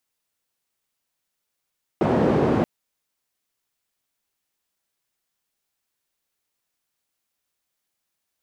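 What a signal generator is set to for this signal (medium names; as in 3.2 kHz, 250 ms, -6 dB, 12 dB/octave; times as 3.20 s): noise band 140–410 Hz, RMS -19.5 dBFS 0.63 s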